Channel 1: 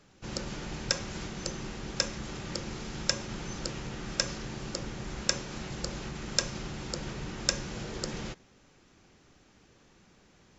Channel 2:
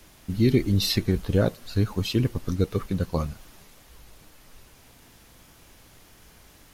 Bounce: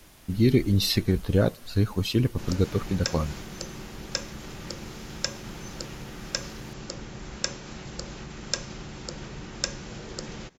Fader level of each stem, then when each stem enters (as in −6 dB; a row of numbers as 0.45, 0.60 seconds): −1.0, 0.0 decibels; 2.15, 0.00 seconds